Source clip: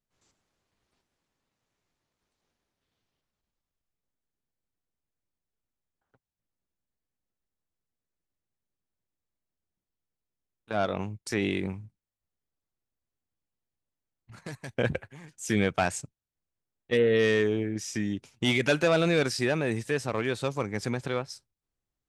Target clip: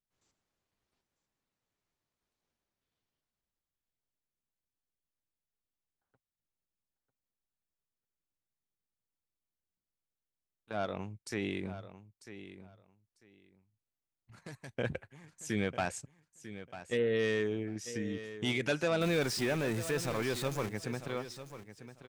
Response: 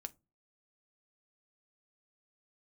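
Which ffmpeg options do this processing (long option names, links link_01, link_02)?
-filter_complex "[0:a]asettb=1/sr,asplit=3[link_01][link_02][link_03];[link_01]atrim=end=19.014[link_04];[link_02]atrim=start=19.01:end=20.69,asetpts=PTS-STARTPTS,afade=type=in:duration=0.004:curve=qsin,afade=type=out:start_time=1.676:duration=0.004:curve=qsin,aeval=exprs='val(0)+0.5*0.0355*sgn(val(0))':channel_layout=same[link_05];[link_03]atrim=start=20.686[link_06];[link_04][link_05]acrossfade=duration=0.004:curve1=hsin:curve2=qsin[link_07];[link_07][link_06]acrossfade=duration=0.004:curve1=qsin:curve2=hsin,asplit=2[link_08][link_09];[link_09]aecho=0:1:946|1892:0.224|0.0403[link_10];[link_08][link_10]amix=inputs=2:normalize=0,volume=-7.5dB"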